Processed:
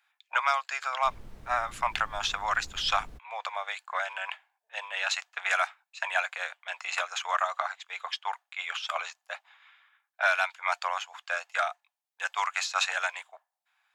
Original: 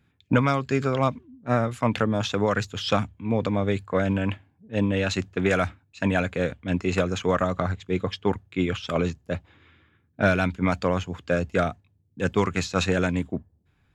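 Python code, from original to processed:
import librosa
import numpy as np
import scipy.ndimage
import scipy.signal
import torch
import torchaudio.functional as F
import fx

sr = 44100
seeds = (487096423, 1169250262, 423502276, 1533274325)

y = scipy.signal.sosfilt(scipy.signal.butter(8, 730.0, 'highpass', fs=sr, output='sos'), x)
y = fx.dmg_noise_colour(y, sr, seeds[0], colour='brown', level_db=-45.0, at=(1.03, 3.17), fade=0.02)
y = y * 10.0 ** (1.0 / 20.0)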